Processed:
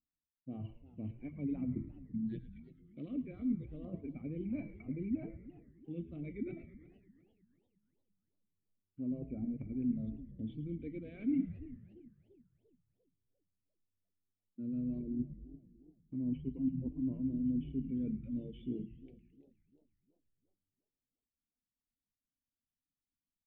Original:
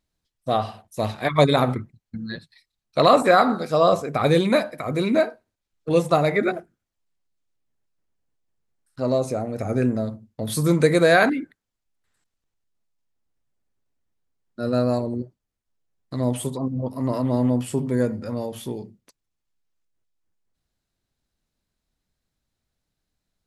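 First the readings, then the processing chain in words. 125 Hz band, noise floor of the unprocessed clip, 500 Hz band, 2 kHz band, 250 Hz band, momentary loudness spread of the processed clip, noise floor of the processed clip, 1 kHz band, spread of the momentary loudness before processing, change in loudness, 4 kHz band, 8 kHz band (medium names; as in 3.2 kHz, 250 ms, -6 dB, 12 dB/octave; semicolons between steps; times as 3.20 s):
-17.0 dB, -82 dBFS, -30.0 dB, under -35 dB, -11.5 dB, 18 LU, under -85 dBFS, under -40 dB, 16 LU, -18.0 dB, under -35 dB, under -40 dB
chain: reverb removal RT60 1.1 s; de-hum 330.3 Hz, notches 39; spectral noise reduction 18 dB; bass shelf 490 Hz +8 dB; reverse; compression 12:1, threshold -31 dBFS, peak gain reduction 24.5 dB; reverse; cascade formant filter i; LFO notch square 0.26 Hz 850–3500 Hz; frequency-shifting echo 108 ms, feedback 60%, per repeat -96 Hz, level -14 dB; modulated delay 343 ms, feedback 42%, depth 211 cents, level -18 dB; trim +3 dB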